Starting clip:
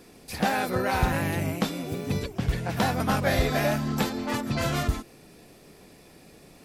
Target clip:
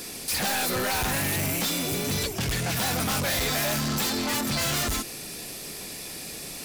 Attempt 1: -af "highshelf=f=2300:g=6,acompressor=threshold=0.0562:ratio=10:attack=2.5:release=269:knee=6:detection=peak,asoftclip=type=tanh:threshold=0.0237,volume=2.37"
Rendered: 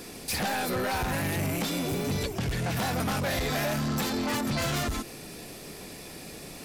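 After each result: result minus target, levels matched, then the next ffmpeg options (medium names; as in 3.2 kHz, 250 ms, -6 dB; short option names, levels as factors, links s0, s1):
compression: peak gain reduction +11.5 dB; 4 kHz band -3.5 dB
-af "highshelf=f=2300:g=6,asoftclip=type=tanh:threshold=0.0237,volume=2.37"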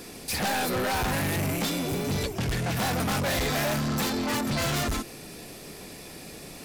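4 kHz band -3.0 dB
-af "highshelf=f=2300:g=16,asoftclip=type=tanh:threshold=0.0237,volume=2.37"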